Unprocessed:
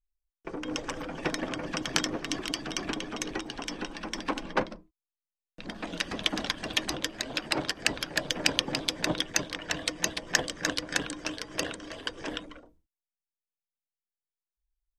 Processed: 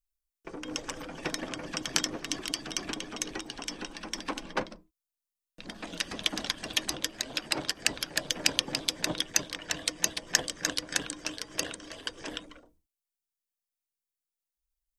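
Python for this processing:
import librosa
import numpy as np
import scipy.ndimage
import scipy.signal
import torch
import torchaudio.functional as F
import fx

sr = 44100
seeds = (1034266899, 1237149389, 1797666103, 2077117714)

y = fx.high_shelf(x, sr, hz=4400.0, db=10.5)
y = F.gain(torch.from_numpy(y), -4.5).numpy()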